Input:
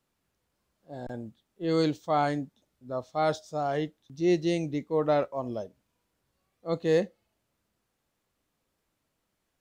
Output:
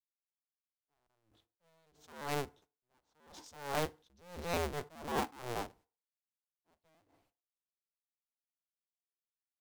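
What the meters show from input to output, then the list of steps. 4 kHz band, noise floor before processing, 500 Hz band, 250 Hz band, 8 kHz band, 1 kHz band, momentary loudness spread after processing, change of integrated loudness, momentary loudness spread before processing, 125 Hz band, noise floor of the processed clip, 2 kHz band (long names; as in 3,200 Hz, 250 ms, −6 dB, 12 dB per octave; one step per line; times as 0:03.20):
−6.0 dB, −80 dBFS, −14.5 dB, −17.0 dB, 0.0 dB, −9.5 dB, 17 LU, −10.0 dB, 16 LU, −12.0 dB, below −85 dBFS, −5.0 dB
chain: sub-harmonics by changed cycles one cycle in 2, inverted
noise gate −59 dBFS, range −47 dB
brickwall limiter −20 dBFS, peak gain reduction 6.5 dB
feedback delay network reverb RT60 0.4 s, low-frequency decay 0.85×, high-frequency decay 0.7×, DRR 18 dB
level that may rise only so fast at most 100 dB per second
level −3.5 dB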